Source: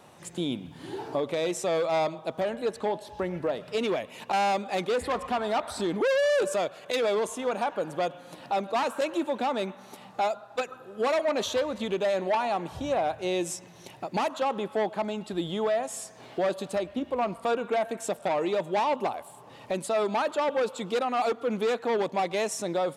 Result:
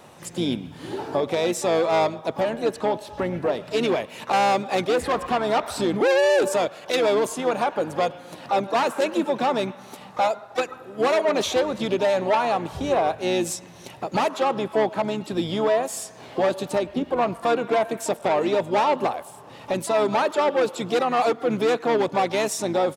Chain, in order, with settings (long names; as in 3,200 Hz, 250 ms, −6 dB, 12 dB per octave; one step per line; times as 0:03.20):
pitch-shifted copies added −7 semitones −12 dB, +7 semitones −14 dB
level +5 dB